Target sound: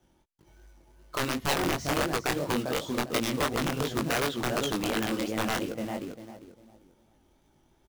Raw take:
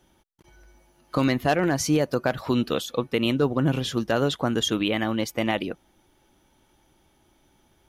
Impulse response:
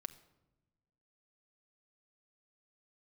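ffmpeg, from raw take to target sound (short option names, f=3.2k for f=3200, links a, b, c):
-filter_complex "[0:a]lowpass=9.3k,asplit=2[a][b];[b]adelay=398,lowpass=f=1.5k:p=1,volume=-4dB,asplit=2[c][d];[d]adelay=398,lowpass=f=1.5k:p=1,volume=0.27,asplit=2[e][f];[f]adelay=398,lowpass=f=1.5k:p=1,volume=0.27,asplit=2[g][h];[h]adelay=398,lowpass=f=1.5k:p=1,volume=0.27[i];[c][e][g][i]amix=inputs=4:normalize=0[j];[a][j]amix=inputs=2:normalize=0,acrossover=split=400|3000[k][l][m];[k]acompressor=threshold=-27dB:ratio=4[n];[n][l][m]amix=inputs=3:normalize=0,acrossover=split=4500[o][p];[o]tiltshelf=f=1.2k:g=3.5[q];[p]asoftclip=type=tanh:threshold=-38.5dB[r];[q][r]amix=inputs=2:normalize=0,acrusher=bits=3:mode=log:mix=0:aa=0.000001,aeval=exprs='(mod(3.98*val(0)+1,2)-1)/3.98':c=same,flanger=delay=18:depth=6.6:speed=2.8,volume=-3.5dB"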